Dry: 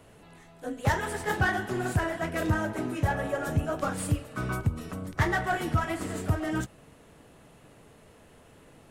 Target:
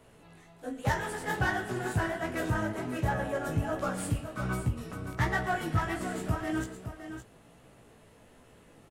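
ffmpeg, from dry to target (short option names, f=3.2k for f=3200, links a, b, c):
-af "flanger=delay=15.5:depth=3.2:speed=1.3,aecho=1:1:116|565:0.141|0.335"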